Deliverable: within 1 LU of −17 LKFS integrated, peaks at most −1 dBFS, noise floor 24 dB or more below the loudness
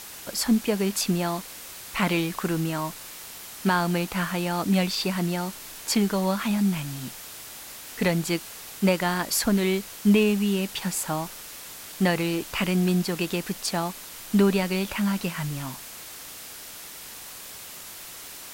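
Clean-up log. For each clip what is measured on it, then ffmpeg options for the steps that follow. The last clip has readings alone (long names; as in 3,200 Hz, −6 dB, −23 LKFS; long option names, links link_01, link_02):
background noise floor −41 dBFS; target noise floor −50 dBFS; integrated loudness −25.5 LKFS; sample peak −10.0 dBFS; target loudness −17.0 LKFS
→ -af "afftdn=noise_reduction=9:noise_floor=-41"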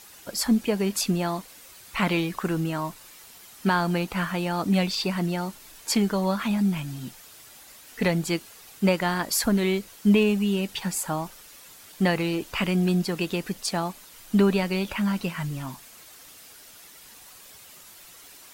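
background noise floor −49 dBFS; target noise floor −50 dBFS
→ -af "afftdn=noise_reduction=6:noise_floor=-49"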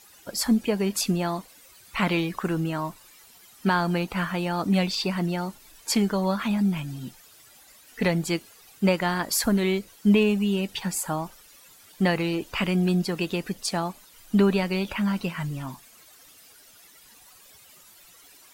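background noise floor −53 dBFS; integrated loudness −26.0 LKFS; sample peak −10.5 dBFS; target loudness −17.0 LKFS
→ -af "volume=9dB"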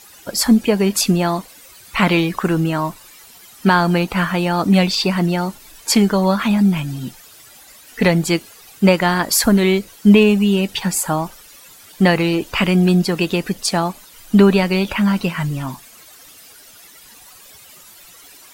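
integrated loudness −17.0 LKFS; sample peak −1.5 dBFS; background noise floor −44 dBFS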